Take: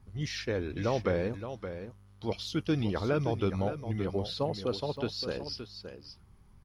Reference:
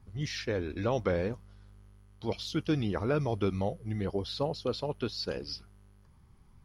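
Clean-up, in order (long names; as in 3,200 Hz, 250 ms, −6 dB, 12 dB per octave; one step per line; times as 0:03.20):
repair the gap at 0:04.97, 1 ms
echo removal 571 ms −10 dB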